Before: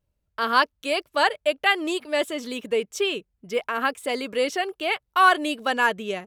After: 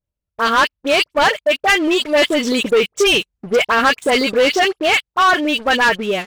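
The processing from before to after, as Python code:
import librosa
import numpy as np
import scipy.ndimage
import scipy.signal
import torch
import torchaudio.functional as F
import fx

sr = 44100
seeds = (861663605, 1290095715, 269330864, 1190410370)

y = fx.env_lowpass_down(x, sr, base_hz=2300.0, full_db=-15.5)
y = fx.dynamic_eq(y, sr, hz=2800.0, q=0.8, threshold_db=-32.0, ratio=4.0, max_db=4)
y = fx.rider(y, sr, range_db=5, speed_s=0.5)
y = fx.dispersion(y, sr, late='highs', ms=49.0, hz=1900.0)
y = fx.leveller(y, sr, passes=3)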